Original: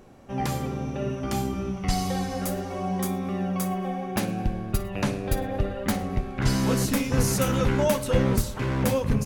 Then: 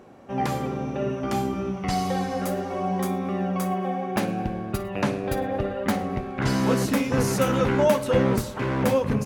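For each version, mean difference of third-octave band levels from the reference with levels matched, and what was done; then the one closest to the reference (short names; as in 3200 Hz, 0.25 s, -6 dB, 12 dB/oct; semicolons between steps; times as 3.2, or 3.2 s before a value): 2.5 dB: HPF 240 Hz 6 dB/oct; high shelf 3200 Hz -10 dB; gain +5 dB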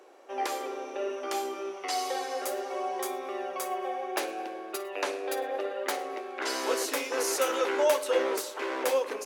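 9.5 dB: steep high-pass 340 Hz 48 dB/oct; high shelf 9300 Hz -6 dB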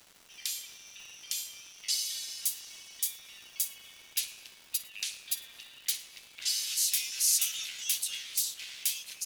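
19.5 dB: inverse Chebyshev high-pass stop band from 700 Hz, stop band 70 dB; crackle 410/s -48 dBFS; gain +5 dB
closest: first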